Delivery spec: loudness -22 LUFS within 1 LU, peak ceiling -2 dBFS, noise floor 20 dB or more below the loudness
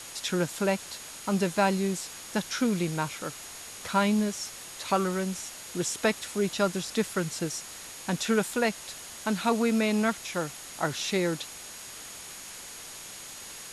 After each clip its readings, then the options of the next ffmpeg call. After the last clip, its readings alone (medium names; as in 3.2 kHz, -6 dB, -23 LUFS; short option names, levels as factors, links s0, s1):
steady tone 6.7 kHz; tone level -48 dBFS; noise floor -43 dBFS; noise floor target -49 dBFS; loudness -29.0 LUFS; peak level -11.0 dBFS; loudness target -22.0 LUFS
-> -af "bandreject=f=6700:w=30"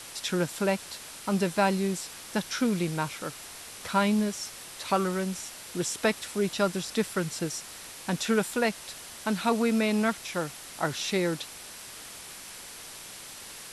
steady tone not found; noise floor -44 dBFS; noise floor target -50 dBFS
-> -af "afftdn=nr=6:nf=-44"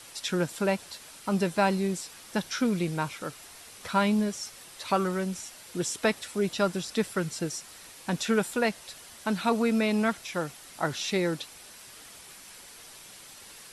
noise floor -49 dBFS; noise floor target -50 dBFS
-> -af "afftdn=nr=6:nf=-49"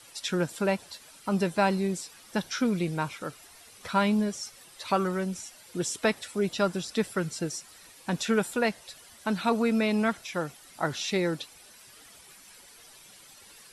noise floor -53 dBFS; loudness -29.5 LUFS; peak level -11.5 dBFS; loudness target -22.0 LUFS
-> -af "volume=2.37"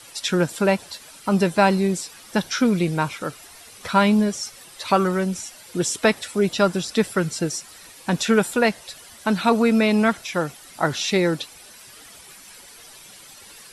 loudness -22.0 LUFS; peak level -4.0 dBFS; noise floor -45 dBFS